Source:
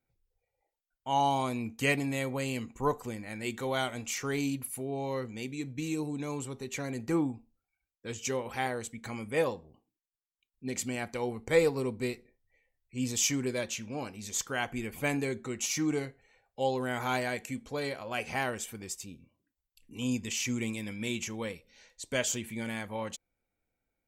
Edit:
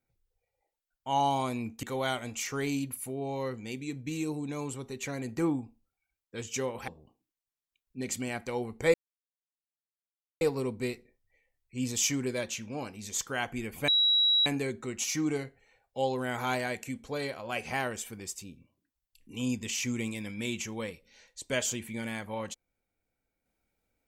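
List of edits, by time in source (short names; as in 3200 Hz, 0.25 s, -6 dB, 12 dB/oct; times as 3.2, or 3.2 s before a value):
1.83–3.54 cut
8.59–9.55 cut
11.61 insert silence 1.47 s
15.08 add tone 3880 Hz -21 dBFS 0.58 s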